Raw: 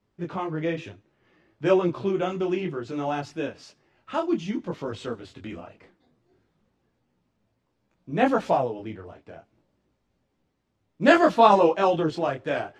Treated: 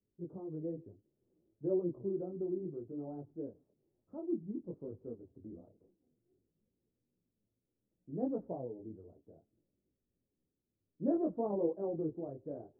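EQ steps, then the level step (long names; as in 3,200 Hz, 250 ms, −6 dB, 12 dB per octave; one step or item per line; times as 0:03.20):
transistor ladder low-pass 540 Hz, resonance 30%
high-frequency loss of the air 280 metres
−6.5 dB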